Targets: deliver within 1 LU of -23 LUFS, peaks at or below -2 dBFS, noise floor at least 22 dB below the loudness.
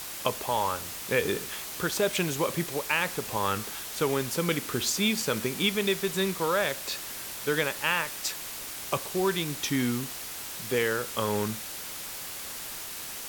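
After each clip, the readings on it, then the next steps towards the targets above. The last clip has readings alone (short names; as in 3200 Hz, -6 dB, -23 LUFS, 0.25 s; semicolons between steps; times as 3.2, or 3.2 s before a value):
noise floor -39 dBFS; noise floor target -51 dBFS; loudness -29.0 LUFS; peak -10.0 dBFS; loudness target -23.0 LUFS
-> denoiser 12 dB, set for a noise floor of -39 dBFS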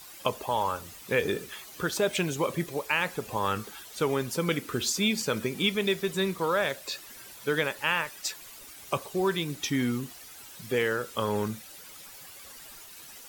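noise floor -47 dBFS; noise floor target -52 dBFS
-> denoiser 6 dB, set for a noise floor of -47 dBFS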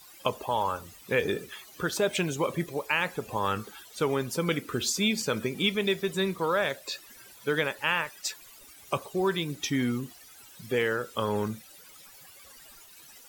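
noise floor -52 dBFS; loudness -29.5 LUFS; peak -10.5 dBFS; loudness target -23.0 LUFS
-> gain +6.5 dB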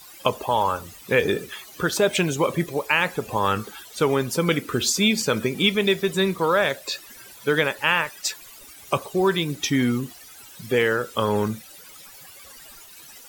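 loudness -23.0 LUFS; peak -4.0 dBFS; noise floor -45 dBFS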